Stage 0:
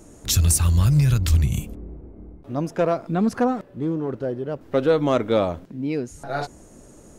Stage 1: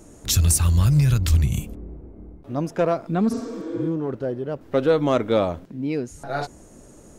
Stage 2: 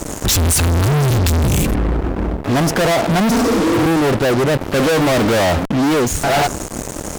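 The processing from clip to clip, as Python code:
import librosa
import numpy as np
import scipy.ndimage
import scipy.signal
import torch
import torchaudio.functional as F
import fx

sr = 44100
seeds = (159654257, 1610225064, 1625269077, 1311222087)

y1 = fx.spec_repair(x, sr, seeds[0], start_s=3.34, length_s=0.5, low_hz=230.0, high_hz=8300.0, source='both')
y2 = fx.dynamic_eq(y1, sr, hz=790.0, q=2.4, threshold_db=-39.0, ratio=4.0, max_db=6)
y2 = fx.fuzz(y2, sr, gain_db=44.0, gate_db=-45.0)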